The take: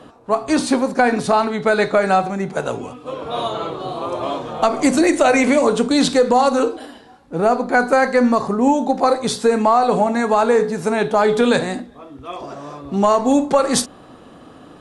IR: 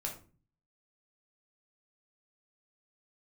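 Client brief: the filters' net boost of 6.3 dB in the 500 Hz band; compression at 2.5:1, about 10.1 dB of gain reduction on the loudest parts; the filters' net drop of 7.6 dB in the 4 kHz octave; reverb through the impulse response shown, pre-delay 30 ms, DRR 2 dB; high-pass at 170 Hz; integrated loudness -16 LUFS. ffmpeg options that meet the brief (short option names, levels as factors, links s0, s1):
-filter_complex "[0:a]highpass=170,equalizer=f=500:t=o:g=7.5,equalizer=f=4000:t=o:g=-9,acompressor=threshold=0.1:ratio=2.5,asplit=2[s0][s1];[1:a]atrim=start_sample=2205,adelay=30[s2];[s1][s2]afir=irnorm=-1:irlink=0,volume=0.75[s3];[s0][s3]amix=inputs=2:normalize=0,volume=1.41"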